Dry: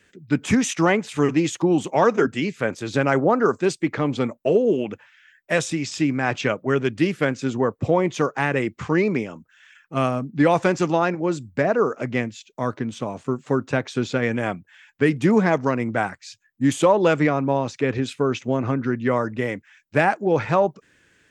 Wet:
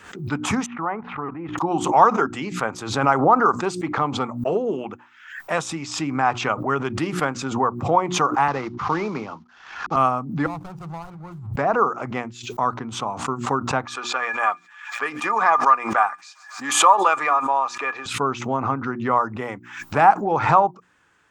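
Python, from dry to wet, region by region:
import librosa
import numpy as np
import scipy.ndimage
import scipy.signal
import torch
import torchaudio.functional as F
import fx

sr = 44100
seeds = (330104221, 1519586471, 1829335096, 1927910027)

y = fx.chain(x, sr, fx.lowpass(hz=2000.0, slope=24),
    fx.level_steps(step_db=13), at=(0.66, 1.58))
y = fx.chain(y, sr, fx.cvsd(bps=32000),
    fx.band_squash(depth_pct=40), at=(8.48, 9.96))
y = fx.chain(y, sr, fx.median_filter(points=41),
    fx.curve_eq(hz=(150.0, 250.0, 6800.0), db=(0, -21, -10)),
    fx.leveller(passes=1), at=(10.46, 11.53))
y = fx.chain(y, sr, fx.highpass(hz=640.0, slope=12),
    fx.small_body(hz=(1200.0, 1700.0, 2400.0), ring_ms=95, db=16),
    fx.echo_wet_highpass(ms=138, feedback_pct=76, hz=4600.0, wet_db=-20), at=(13.85, 18.06))
y = fx.band_shelf(y, sr, hz=1000.0, db=13.0, octaves=1.1)
y = fx.hum_notches(y, sr, base_hz=60, count=6)
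y = fx.pre_swell(y, sr, db_per_s=83.0)
y = y * librosa.db_to_amplitude(-5.0)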